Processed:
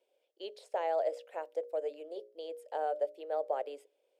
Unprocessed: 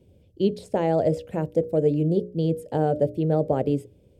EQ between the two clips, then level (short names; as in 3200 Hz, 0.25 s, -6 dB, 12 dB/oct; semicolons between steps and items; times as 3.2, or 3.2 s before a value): inverse Chebyshev high-pass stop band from 170 Hz, stop band 60 dB; high shelf 5000 Hz -8 dB; -5.5 dB